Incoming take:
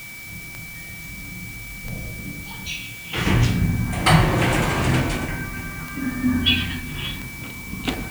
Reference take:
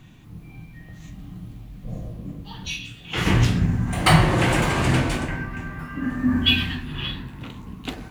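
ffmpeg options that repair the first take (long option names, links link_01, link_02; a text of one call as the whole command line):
ffmpeg -i in.wav -af "adeclick=threshold=4,bandreject=frequency=2300:width=30,afwtdn=0.0079,asetnsamples=nb_out_samples=441:pad=0,asendcmd='7.72 volume volume -6.5dB',volume=0dB" out.wav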